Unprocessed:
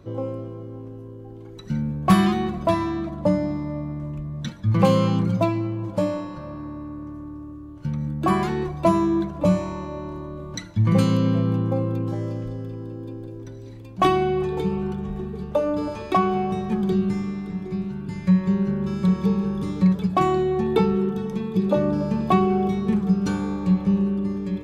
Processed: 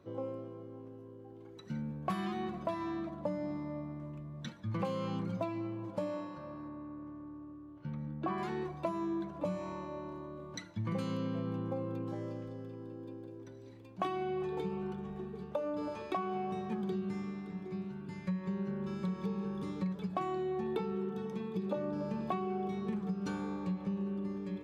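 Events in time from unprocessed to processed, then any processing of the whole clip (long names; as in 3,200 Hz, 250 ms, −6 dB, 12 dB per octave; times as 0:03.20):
0:06.68–0:08.38: Gaussian smoothing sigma 1.8 samples
whole clip: high-pass filter 260 Hz 6 dB per octave; high-shelf EQ 4,800 Hz −7 dB; downward compressor, threshold −24 dBFS; level −8 dB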